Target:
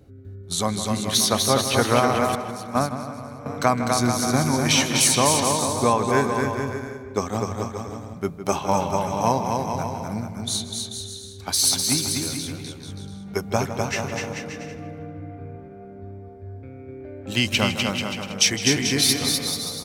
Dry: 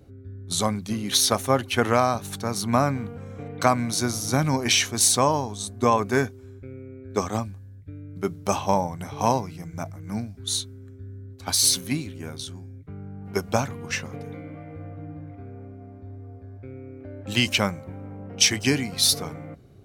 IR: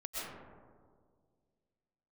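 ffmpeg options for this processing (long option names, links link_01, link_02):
-filter_complex "[0:a]asplit=2[link_01][link_02];[link_02]aecho=0:1:250|437.5|578.1|683.6|762.7:0.631|0.398|0.251|0.158|0.1[link_03];[link_01][link_03]amix=inputs=2:normalize=0,asettb=1/sr,asplit=3[link_04][link_05][link_06];[link_04]atrim=end=2.354[link_07];[link_05]atrim=start=2.35:end=3.46,asetpts=PTS-STARTPTS,afade=type=in:duration=0.004:curve=qsin,afade=type=out:start_time=1.106:duration=0.004:curve=qsin,agate=range=-12dB:threshold=-18dB:ratio=16:detection=peak[link_08];[link_06]atrim=start=3.456[link_09];[link_07][link_08]acrossfade=duration=0.004:curve1=hsin:curve2=qsin[link_10];[link_10][link_09]acrossfade=duration=0.004:curve1=qsin:curve2=hsin,asplit=2[link_11][link_12];[link_12]adelay=158,lowpass=frequency=3600:poles=1,volume=-11dB,asplit=2[link_13][link_14];[link_14]adelay=158,lowpass=frequency=3600:poles=1,volume=0.55,asplit=2[link_15][link_16];[link_16]adelay=158,lowpass=frequency=3600:poles=1,volume=0.55,asplit=2[link_17][link_18];[link_18]adelay=158,lowpass=frequency=3600:poles=1,volume=0.55,asplit=2[link_19][link_20];[link_20]adelay=158,lowpass=frequency=3600:poles=1,volume=0.55,asplit=2[link_21][link_22];[link_22]adelay=158,lowpass=frequency=3600:poles=1,volume=0.55[link_23];[link_13][link_15][link_17][link_19][link_21][link_23]amix=inputs=6:normalize=0[link_24];[link_11][link_24]amix=inputs=2:normalize=0"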